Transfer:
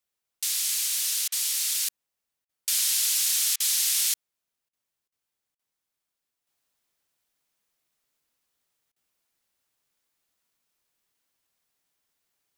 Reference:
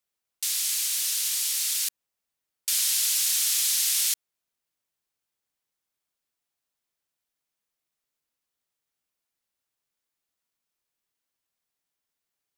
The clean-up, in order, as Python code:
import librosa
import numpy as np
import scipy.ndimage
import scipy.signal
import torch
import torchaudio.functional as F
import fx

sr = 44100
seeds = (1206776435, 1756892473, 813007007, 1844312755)

y = fx.fix_declip(x, sr, threshold_db=-13.5)
y = fx.fix_interpolate(y, sr, at_s=(1.28, 2.45, 3.56, 4.69, 5.08, 5.55, 8.92), length_ms=40.0)
y = fx.fix_level(y, sr, at_s=6.47, step_db=-6.5)